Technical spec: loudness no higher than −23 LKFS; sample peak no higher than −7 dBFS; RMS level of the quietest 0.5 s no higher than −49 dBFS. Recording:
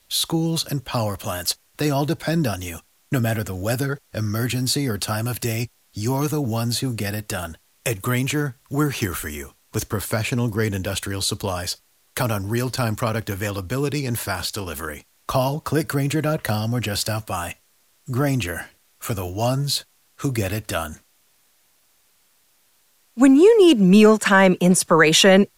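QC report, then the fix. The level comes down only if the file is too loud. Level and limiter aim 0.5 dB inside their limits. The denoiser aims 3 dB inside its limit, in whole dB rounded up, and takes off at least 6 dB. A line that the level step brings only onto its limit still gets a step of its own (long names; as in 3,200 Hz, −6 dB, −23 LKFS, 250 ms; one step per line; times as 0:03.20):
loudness −21.0 LKFS: out of spec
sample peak −2.5 dBFS: out of spec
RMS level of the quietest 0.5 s −61 dBFS: in spec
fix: level −2.5 dB
brickwall limiter −7.5 dBFS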